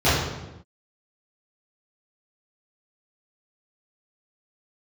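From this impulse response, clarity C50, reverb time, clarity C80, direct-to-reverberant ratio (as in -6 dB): 0.0 dB, no single decay rate, 3.0 dB, -14.5 dB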